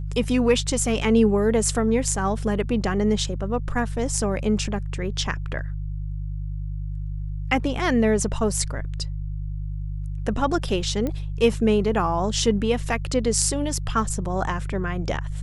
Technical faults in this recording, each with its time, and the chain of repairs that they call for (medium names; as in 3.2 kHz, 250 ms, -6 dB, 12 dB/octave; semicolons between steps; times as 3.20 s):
hum 50 Hz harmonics 3 -29 dBFS
11.07 s: pop -15 dBFS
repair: de-click; de-hum 50 Hz, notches 3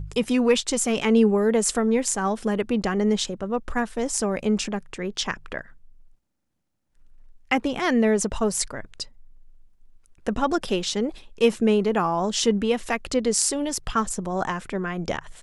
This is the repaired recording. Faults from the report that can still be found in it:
nothing left